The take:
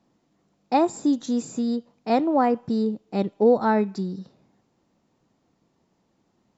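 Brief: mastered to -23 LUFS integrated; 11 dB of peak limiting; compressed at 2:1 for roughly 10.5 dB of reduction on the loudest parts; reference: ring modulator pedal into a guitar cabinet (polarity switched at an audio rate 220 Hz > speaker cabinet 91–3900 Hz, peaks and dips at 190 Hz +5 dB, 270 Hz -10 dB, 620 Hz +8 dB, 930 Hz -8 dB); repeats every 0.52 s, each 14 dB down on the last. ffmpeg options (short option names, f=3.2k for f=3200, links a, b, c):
-af "acompressor=threshold=-32dB:ratio=2,alimiter=level_in=4.5dB:limit=-24dB:level=0:latency=1,volume=-4.5dB,aecho=1:1:520|1040:0.2|0.0399,aeval=exprs='val(0)*sgn(sin(2*PI*220*n/s))':c=same,highpass=91,equalizer=f=190:t=q:w=4:g=5,equalizer=f=270:t=q:w=4:g=-10,equalizer=f=620:t=q:w=4:g=8,equalizer=f=930:t=q:w=4:g=-8,lowpass=f=3.9k:w=0.5412,lowpass=f=3.9k:w=1.3066,volume=15dB"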